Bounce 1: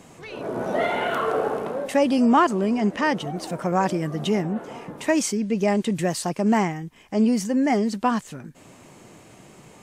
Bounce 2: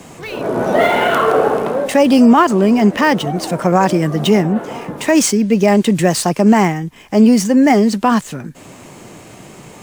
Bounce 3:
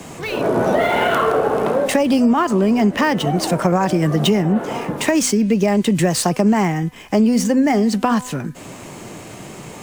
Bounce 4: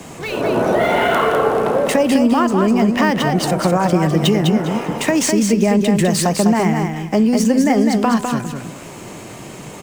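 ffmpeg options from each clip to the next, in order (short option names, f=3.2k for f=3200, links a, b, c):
-filter_complex "[0:a]acrossover=split=160|1000|2300[a][b][c][d];[d]acrusher=bits=2:mode=log:mix=0:aa=0.000001[e];[a][b][c][e]amix=inputs=4:normalize=0,alimiter=level_in=11.5dB:limit=-1dB:release=50:level=0:latency=1,volume=-1dB"
-filter_complex "[0:a]bandreject=f=251.3:t=h:w=4,bandreject=f=502.6:t=h:w=4,bandreject=f=753.9:t=h:w=4,bandreject=f=1.0052k:t=h:w=4,bandreject=f=1.2565k:t=h:w=4,bandreject=f=1.5078k:t=h:w=4,bandreject=f=1.7591k:t=h:w=4,bandreject=f=2.0104k:t=h:w=4,bandreject=f=2.2617k:t=h:w=4,bandreject=f=2.513k:t=h:w=4,bandreject=f=2.7643k:t=h:w=4,bandreject=f=3.0156k:t=h:w=4,acrossover=split=120[a][b];[b]acompressor=threshold=-16dB:ratio=6[c];[a][c]amix=inputs=2:normalize=0,volume=2.5dB"
-af "aecho=1:1:203|406|609:0.562|0.135|0.0324"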